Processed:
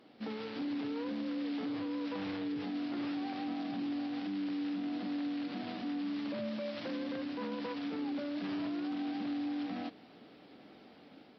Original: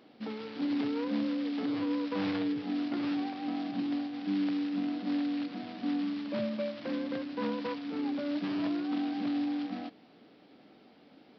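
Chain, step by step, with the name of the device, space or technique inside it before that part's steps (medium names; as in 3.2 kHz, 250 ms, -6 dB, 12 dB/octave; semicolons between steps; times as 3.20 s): 6.48–7.13 s: treble shelf 4.3 kHz +5 dB; low-bitrate web radio (level rider gain up to 3.5 dB; peak limiter -29 dBFS, peak gain reduction 10 dB; trim -2 dB; AAC 48 kbps 44.1 kHz)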